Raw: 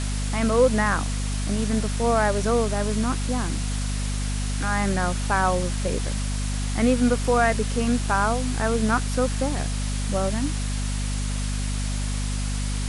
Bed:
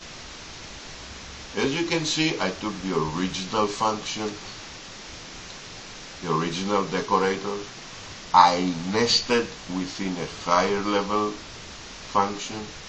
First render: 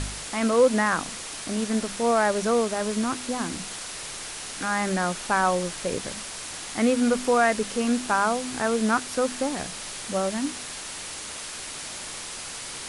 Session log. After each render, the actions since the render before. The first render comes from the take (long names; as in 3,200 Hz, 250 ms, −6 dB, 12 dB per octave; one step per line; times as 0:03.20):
hum removal 50 Hz, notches 5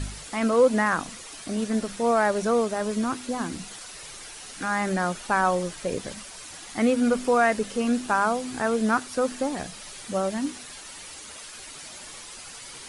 broadband denoise 9 dB, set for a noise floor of −37 dBFS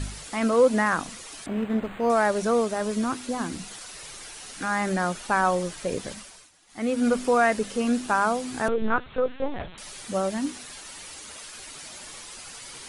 0:01.46–0:02.10: linearly interpolated sample-rate reduction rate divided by 8×
0:06.11–0:07.07: duck −18.5 dB, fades 0.40 s
0:08.68–0:09.78: linear-prediction vocoder at 8 kHz pitch kept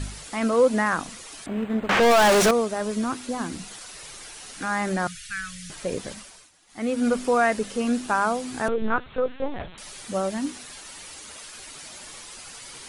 0:01.89–0:02.51: mid-hump overdrive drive 37 dB, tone 5,500 Hz, clips at −11 dBFS
0:05.07–0:05.70: inverse Chebyshev band-stop filter 250–1,000 Hz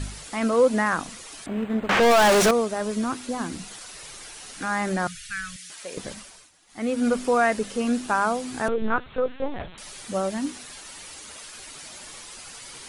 0:05.56–0:05.97: high-pass filter 1,300 Hz 6 dB per octave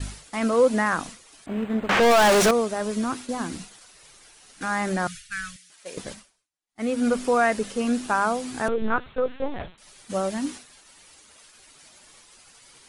downward expander −33 dBFS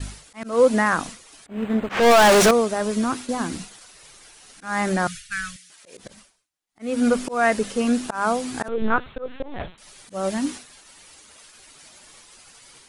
automatic gain control gain up to 3.5 dB
volume swells 186 ms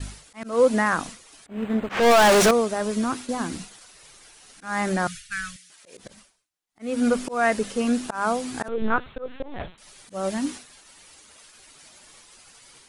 level −2 dB